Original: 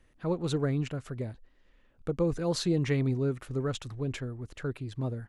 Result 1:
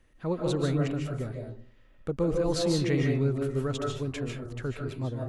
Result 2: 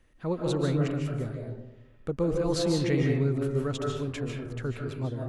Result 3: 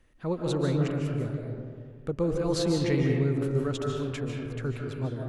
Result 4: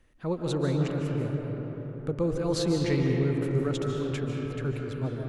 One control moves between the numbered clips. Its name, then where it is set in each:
algorithmic reverb, RT60: 0.45 s, 0.97 s, 2 s, 4.6 s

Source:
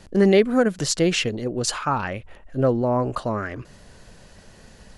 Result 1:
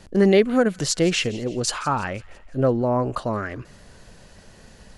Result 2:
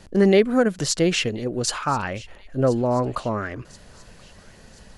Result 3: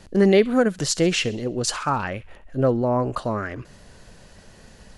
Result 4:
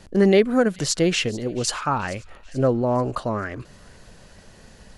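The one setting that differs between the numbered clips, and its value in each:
feedback echo behind a high-pass, time: 168 ms, 1030 ms, 66 ms, 436 ms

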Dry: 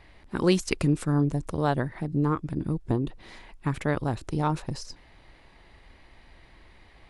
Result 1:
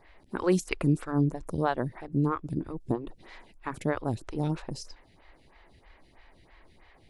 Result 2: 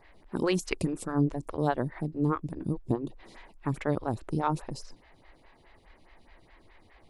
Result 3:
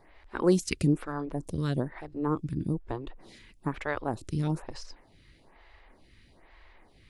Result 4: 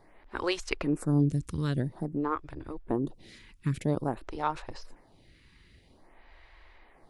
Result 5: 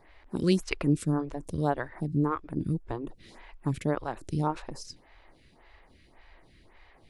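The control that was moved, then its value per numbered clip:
lamp-driven phase shifter, rate: 3.1 Hz, 4.8 Hz, 1.1 Hz, 0.5 Hz, 1.8 Hz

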